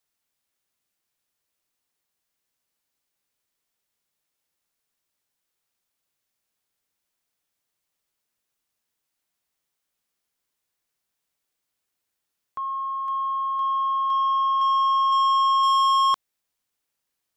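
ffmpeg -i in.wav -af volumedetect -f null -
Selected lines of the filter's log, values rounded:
mean_volume: -28.3 dB
max_volume: -17.9 dB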